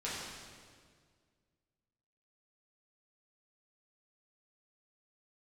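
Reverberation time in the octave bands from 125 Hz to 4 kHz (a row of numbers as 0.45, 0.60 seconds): 2.3, 2.2, 2.0, 1.7, 1.6, 1.6 seconds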